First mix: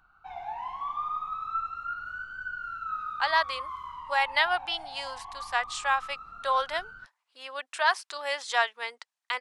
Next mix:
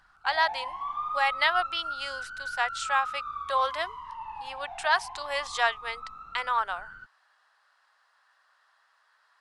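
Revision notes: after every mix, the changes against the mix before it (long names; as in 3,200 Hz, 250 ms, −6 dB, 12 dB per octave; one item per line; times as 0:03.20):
speech: entry −2.95 s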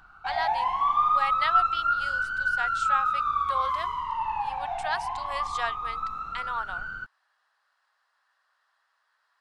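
speech −6.0 dB
background +10.0 dB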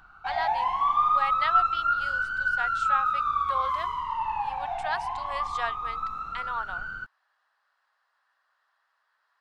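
speech: add high-shelf EQ 4,600 Hz −8 dB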